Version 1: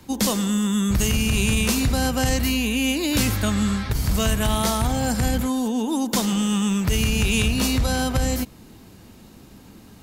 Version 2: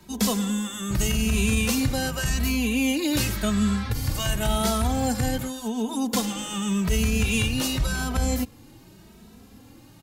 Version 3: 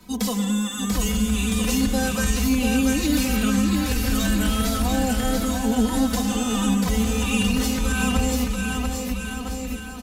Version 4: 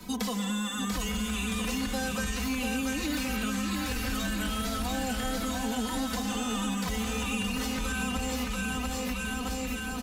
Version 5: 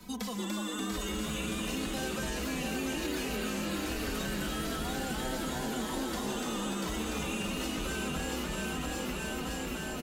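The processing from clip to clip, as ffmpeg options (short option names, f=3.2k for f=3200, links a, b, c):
-filter_complex "[0:a]asplit=2[a][b];[b]adelay=2.7,afreqshift=0.88[c];[a][c]amix=inputs=2:normalize=1"
-filter_complex "[0:a]aecho=1:1:4:0.97,alimiter=limit=-14.5dB:level=0:latency=1:release=151,asplit=2[a][b];[b]aecho=0:1:690|1311|1870|2373|2826:0.631|0.398|0.251|0.158|0.1[c];[a][c]amix=inputs=2:normalize=0"
-filter_complex "[0:a]equalizer=f=66:w=1.5:g=-2.5,acrossover=split=810|2200|4800[a][b][c][d];[a]acompressor=threshold=-35dB:ratio=4[e];[b]acompressor=threshold=-41dB:ratio=4[f];[c]acompressor=threshold=-45dB:ratio=4[g];[d]acompressor=threshold=-46dB:ratio=4[h];[e][f][g][h]amix=inputs=4:normalize=0,asplit=2[i][j];[j]asoftclip=type=tanh:threshold=-38.5dB,volume=-6.5dB[k];[i][k]amix=inputs=2:normalize=0,volume=1dB"
-filter_complex "[0:a]asplit=8[a][b][c][d][e][f][g][h];[b]adelay=292,afreqshift=110,volume=-4dB[i];[c]adelay=584,afreqshift=220,volume=-9.2dB[j];[d]adelay=876,afreqshift=330,volume=-14.4dB[k];[e]adelay=1168,afreqshift=440,volume=-19.6dB[l];[f]adelay=1460,afreqshift=550,volume=-24.8dB[m];[g]adelay=1752,afreqshift=660,volume=-30dB[n];[h]adelay=2044,afreqshift=770,volume=-35.2dB[o];[a][i][j][k][l][m][n][o]amix=inputs=8:normalize=0,volume=-5.5dB"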